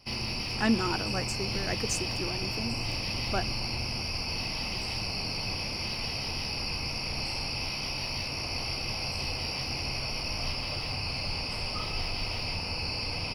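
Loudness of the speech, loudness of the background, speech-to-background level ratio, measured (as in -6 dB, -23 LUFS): -33.5 LUFS, -31.5 LUFS, -2.0 dB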